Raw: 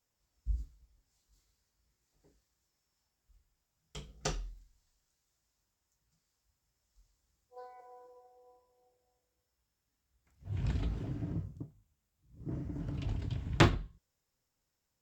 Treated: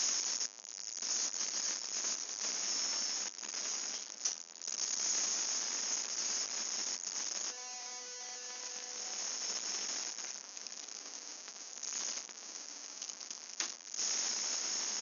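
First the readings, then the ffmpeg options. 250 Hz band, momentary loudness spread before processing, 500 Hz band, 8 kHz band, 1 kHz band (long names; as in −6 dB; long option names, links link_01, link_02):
−16.0 dB, 25 LU, −8.0 dB, +22.5 dB, −4.0 dB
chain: -filter_complex "[0:a]aeval=exprs='val(0)+0.5*0.0631*sgn(val(0))':channel_layout=same,acrossover=split=410|1000[link_01][link_02][link_03];[link_03]aexciter=amount=6.8:drive=4.5:freq=5200[link_04];[link_01][link_02][link_04]amix=inputs=3:normalize=0,aderivative,areverse,acompressor=mode=upward:threshold=-15dB:ratio=2.5,areverse,aeval=exprs='1.58*(cos(1*acos(clip(val(0)/1.58,-1,1)))-cos(1*PI/2))+0.0398*(cos(7*acos(clip(val(0)/1.58,-1,1)))-cos(7*PI/2))':channel_layout=same,volume=4dB,asoftclip=hard,volume=-4dB,afftfilt=real='re*between(b*sr/4096,190,6800)':imag='im*between(b*sr/4096,190,6800)':win_size=4096:overlap=0.75,asplit=2[link_05][link_06];[link_06]adelay=1135,lowpass=frequency=1400:poles=1,volume=-12dB,asplit=2[link_07][link_08];[link_08]adelay=1135,lowpass=frequency=1400:poles=1,volume=0.45,asplit=2[link_09][link_10];[link_10]adelay=1135,lowpass=frequency=1400:poles=1,volume=0.45,asplit=2[link_11][link_12];[link_12]adelay=1135,lowpass=frequency=1400:poles=1,volume=0.45,asplit=2[link_13][link_14];[link_14]adelay=1135,lowpass=frequency=1400:poles=1,volume=0.45[link_15];[link_05][link_07][link_09][link_11][link_13][link_15]amix=inputs=6:normalize=0,adynamicequalizer=threshold=0.00794:dfrequency=3500:dqfactor=0.7:tfrequency=3500:tqfactor=0.7:attack=5:release=100:ratio=0.375:range=3:mode=cutabove:tftype=highshelf,volume=-4dB"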